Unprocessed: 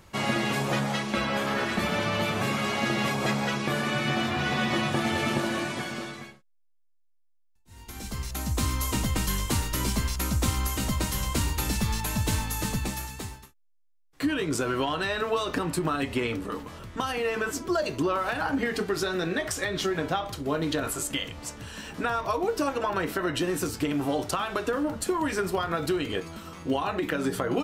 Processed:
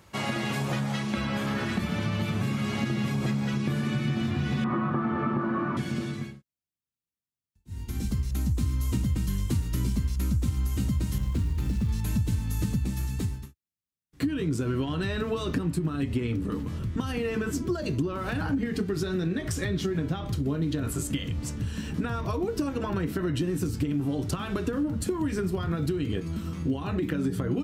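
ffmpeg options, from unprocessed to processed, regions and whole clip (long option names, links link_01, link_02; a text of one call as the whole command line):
ffmpeg -i in.wav -filter_complex "[0:a]asettb=1/sr,asplit=3[link_01][link_02][link_03];[link_01]atrim=end=4.644[link_04];[link_02]atrim=start=4.64:end=5.77,asetpts=PTS-STARTPTS,afade=type=in:duration=0.004:curve=qsin,afade=type=out:start_time=1.126:duration=0.004:curve=qsin,aeval=exprs='val(0)+0.5*0.0299*sgn(val(0))':channel_layout=same,lowpass=frequency=1200:width_type=q:width=4.5,equalizer=frequency=89:width_type=o:width=1.1:gain=-14[link_05];[link_03]atrim=start=5.766[link_06];[link_04][link_05]acrossfade=duration=0.004:curve1=hsin:curve2=qsin[link_07];[link_07][link_06]acrossfade=duration=0.004:curve1=qsin:curve2=hsin,asettb=1/sr,asplit=3[link_08][link_09][link_10];[link_08]atrim=end=11.184[link_11];[link_09]atrim=start=11.18:end=11.89,asetpts=PTS-STARTPTS,afade=type=in:duration=0.004:curve=qsin,afade=type=out:start_time=0.706:duration=0.004:curve=qsin,lowpass=frequency=3000:poles=1,aeval=exprs='(tanh(12.6*val(0)+0.15)-tanh(0.15))/12.6':channel_layout=same,acrusher=bits=4:mode=log:mix=0:aa=0.000001[link_12];[link_10]atrim=start=11.886[link_13];[link_11][link_12]acrossfade=duration=0.004:curve1=hsin:curve2=qsin[link_14];[link_14][link_13]acrossfade=duration=0.004:curve1=qsin:curve2=hsin,highpass=62,asubboost=boost=7.5:cutoff=250,acompressor=threshold=-24dB:ratio=4,volume=-1.5dB" out.wav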